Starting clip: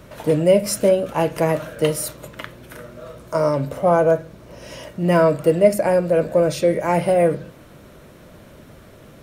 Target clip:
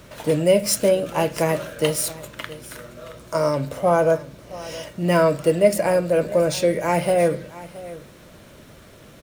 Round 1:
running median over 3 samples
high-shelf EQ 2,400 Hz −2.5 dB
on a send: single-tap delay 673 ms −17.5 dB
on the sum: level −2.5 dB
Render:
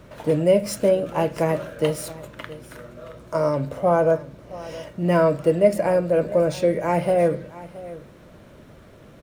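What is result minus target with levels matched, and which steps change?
4,000 Hz band −7.0 dB
change: high-shelf EQ 2,400 Hz +8.5 dB

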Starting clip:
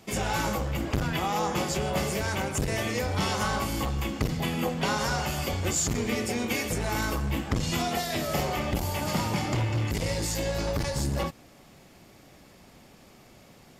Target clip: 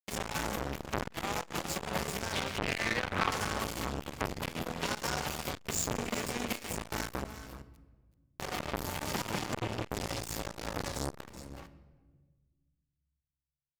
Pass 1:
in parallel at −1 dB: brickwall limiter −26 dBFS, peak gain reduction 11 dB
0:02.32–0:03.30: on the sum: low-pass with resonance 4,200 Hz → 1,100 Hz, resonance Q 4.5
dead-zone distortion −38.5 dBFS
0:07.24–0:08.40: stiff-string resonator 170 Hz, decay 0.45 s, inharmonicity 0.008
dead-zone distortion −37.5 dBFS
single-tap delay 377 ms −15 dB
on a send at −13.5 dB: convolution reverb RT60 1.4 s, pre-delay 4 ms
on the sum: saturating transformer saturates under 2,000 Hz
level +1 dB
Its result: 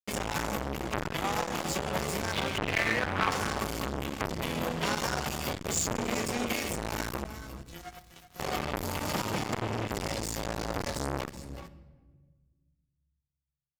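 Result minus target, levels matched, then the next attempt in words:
second dead-zone distortion: distortion −10 dB
in parallel at −1 dB: brickwall limiter −26 dBFS, peak gain reduction 11 dB
0:02.32–0:03.30: on the sum: low-pass with resonance 4,200 Hz → 1,100 Hz, resonance Q 4.5
dead-zone distortion −38.5 dBFS
0:07.24–0:08.40: stiff-string resonator 170 Hz, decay 0.45 s, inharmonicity 0.008
dead-zone distortion −27.5 dBFS
single-tap delay 377 ms −15 dB
on a send at −13.5 dB: convolution reverb RT60 1.4 s, pre-delay 4 ms
on the sum: saturating transformer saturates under 2,000 Hz
level +1 dB

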